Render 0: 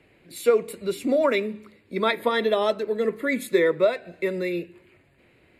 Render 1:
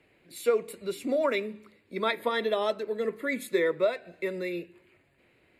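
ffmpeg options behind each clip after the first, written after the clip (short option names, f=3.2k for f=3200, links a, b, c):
-af "lowshelf=f=270:g=-4.5,volume=-4.5dB"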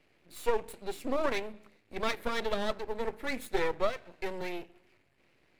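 -af "aeval=exprs='max(val(0),0)':c=same"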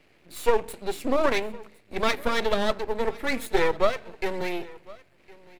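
-af "aecho=1:1:1059:0.075,volume=7.5dB"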